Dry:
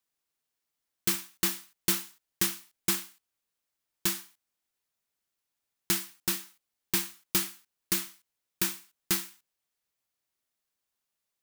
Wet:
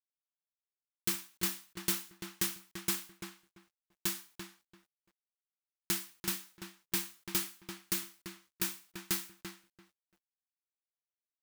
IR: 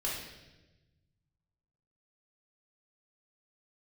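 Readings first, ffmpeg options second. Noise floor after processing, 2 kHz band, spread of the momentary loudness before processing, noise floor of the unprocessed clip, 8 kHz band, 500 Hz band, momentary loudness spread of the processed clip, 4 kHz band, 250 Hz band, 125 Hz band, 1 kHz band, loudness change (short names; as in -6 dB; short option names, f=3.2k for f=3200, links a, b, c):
under -85 dBFS, -5.0 dB, 9 LU, -85 dBFS, -5.5 dB, -4.5 dB, 15 LU, -5.0 dB, -4.5 dB, -4.5 dB, -5.0 dB, -5.5 dB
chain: -filter_complex "[0:a]asplit=2[a][b];[b]adelay=340,lowpass=f=2.6k:p=1,volume=-6.5dB,asplit=2[c][d];[d]adelay=340,lowpass=f=2.6k:p=1,volume=0.18,asplit=2[e][f];[f]adelay=340,lowpass=f=2.6k:p=1,volume=0.18[g];[a][c][e][g]amix=inputs=4:normalize=0,acrusher=bits=10:mix=0:aa=0.000001,volume=-5.5dB"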